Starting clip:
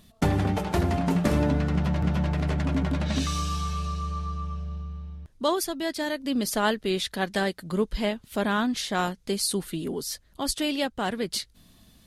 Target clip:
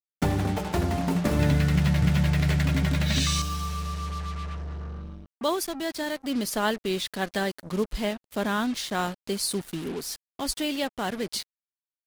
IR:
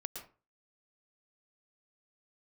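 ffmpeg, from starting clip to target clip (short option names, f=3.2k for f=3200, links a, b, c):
-filter_complex "[0:a]asettb=1/sr,asplit=3[a][b][c];[a]atrim=end=1.394[d];[b]atrim=start=1.39:end=3.42,asetpts=PTS-STARTPTS,afade=t=in:d=0.004:c=qsin,afade=t=out:st=2.026:d=0.004:c=qsin,equalizer=f=125:t=o:w=1:g=11,equalizer=f=250:t=o:w=1:g=-4,equalizer=f=1k:t=o:w=1:g=-3,equalizer=f=2k:t=o:w=1:g=8,equalizer=f=4k:t=o:w=1:g=6,equalizer=f=8k:t=o:w=1:g=8[e];[c]atrim=start=3.416[f];[d][e]acrossfade=d=0.004:c1=hsin:c2=qsin[g];[g][f]acrossfade=d=0.004:c1=qsin:c2=hsin,acrusher=bits=5:mix=0:aa=0.5,volume=-1.5dB"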